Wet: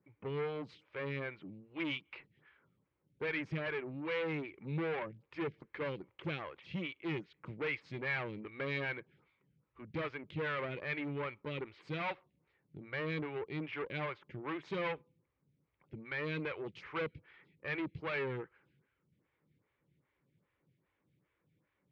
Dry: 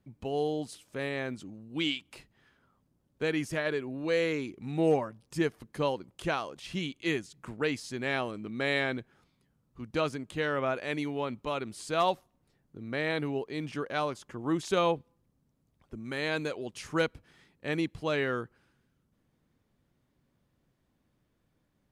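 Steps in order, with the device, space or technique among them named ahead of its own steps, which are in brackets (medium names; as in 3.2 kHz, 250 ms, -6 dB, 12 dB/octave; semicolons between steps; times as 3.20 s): vibe pedal into a guitar amplifier (lamp-driven phase shifter 2.5 Hz; valve stage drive 35 dB, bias 0.5; cabinet simulation 77–3400 Hz, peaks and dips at 150 Hz +4 dB, 240 Hz -9 dB, 690 Hz -9 dB, 2.2 kHz +8 dB); trim +2.5 dB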